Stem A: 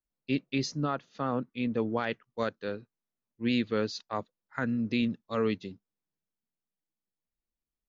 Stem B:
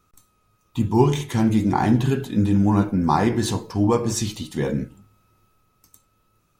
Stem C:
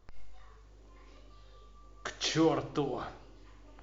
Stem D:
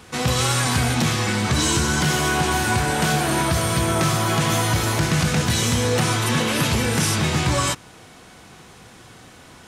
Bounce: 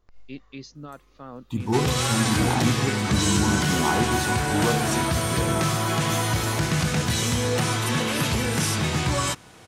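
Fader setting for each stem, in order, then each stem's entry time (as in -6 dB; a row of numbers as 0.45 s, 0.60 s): -9.5 dB, -6.0 dB, -5.0 dB, -3.5 dB; 0.00 s, 0.75 s, 0.00 s, 1.60 s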